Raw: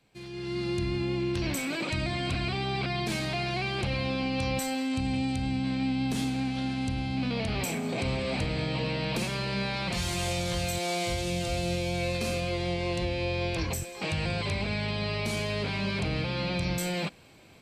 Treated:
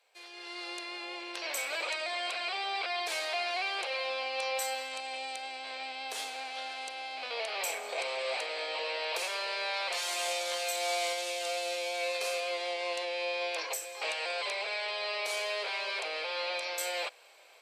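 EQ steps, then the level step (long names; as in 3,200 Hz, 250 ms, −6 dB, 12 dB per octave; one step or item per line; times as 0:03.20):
Butterworth high-pass 490 Hz 36 dB per octave
0.0 dB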